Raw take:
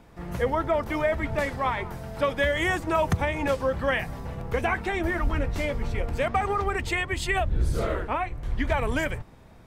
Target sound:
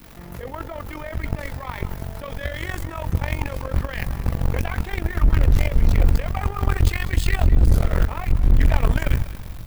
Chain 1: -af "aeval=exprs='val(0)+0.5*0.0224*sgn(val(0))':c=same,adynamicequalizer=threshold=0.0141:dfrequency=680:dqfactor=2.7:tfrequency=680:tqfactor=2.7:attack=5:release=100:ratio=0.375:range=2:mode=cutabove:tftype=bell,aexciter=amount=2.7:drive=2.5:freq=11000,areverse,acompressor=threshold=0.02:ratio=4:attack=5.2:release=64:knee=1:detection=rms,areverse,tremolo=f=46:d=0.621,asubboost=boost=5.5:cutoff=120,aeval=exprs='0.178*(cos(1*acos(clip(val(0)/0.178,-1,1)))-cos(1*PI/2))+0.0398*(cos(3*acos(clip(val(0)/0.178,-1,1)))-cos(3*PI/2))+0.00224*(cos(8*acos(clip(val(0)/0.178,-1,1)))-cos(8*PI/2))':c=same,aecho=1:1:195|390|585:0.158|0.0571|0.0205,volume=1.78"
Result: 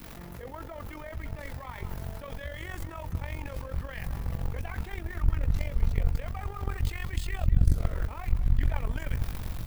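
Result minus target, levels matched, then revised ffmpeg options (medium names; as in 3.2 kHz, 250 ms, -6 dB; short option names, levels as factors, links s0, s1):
compression: peak gain reduction +6.5 dB
-af "aeval=exprs='val(0)+0.5*0.0224*sgn(val(0))':c=same,adynamicequalizer=threshold=0.0141:dfrequency=680:dqfactor=2.7:tfrequency=680:tqfactor=2.7:attack=5:release=100:ratio=0.375:range=2:mode=cutabove:tftype=bell,aexciter=amount=2.7:drive=2.5:freq=11000,areverse,acompressor=threshold=0.0562:ratio=4:attack=5.2:release=64:knee=1:detection=rms,areverse,tremolo=f=46:d=0.621,asubboost=boost=5.5:cutoff=120,aeval=exprs='0.178*(cos(1*acos(clip(val(0)/0.178,-1,1)))-cos(1*PI/2))+0.0398*(cos(3*acos(clip(val(0)/0.178,-1,1)))-cos(3*PI/2))+0.00224*(cos(8*acos(clip(val(0)/0.178,-1,1)))-cos(8*PI/2))':c=same,aecho=1:1:195|390|585:0.158|0.0571|0.0205,volume=1.78"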